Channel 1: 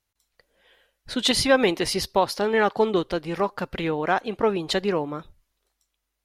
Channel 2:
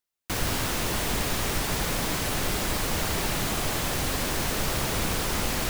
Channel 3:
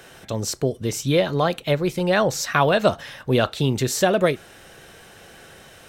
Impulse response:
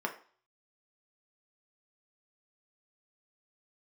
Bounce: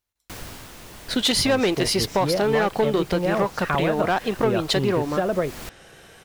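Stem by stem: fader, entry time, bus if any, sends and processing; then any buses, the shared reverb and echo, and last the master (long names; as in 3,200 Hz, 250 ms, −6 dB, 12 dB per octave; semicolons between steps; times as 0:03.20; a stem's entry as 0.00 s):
−1.5 dB, 0.00 s, no send, leveller curve on the samples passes 2
−2.5 dB, 0.00 s, no send, automatic ducking −12 dB, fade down 0.70 s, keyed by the first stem
−2.0 dB, 1.15 s, no send, treble cut that deepens with the level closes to 1,700 Hz, closed at −19 dBFS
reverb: not used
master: downward compressor 2.5 to 1, threshold −19 dBFS, peak gain reduction 5.5 dB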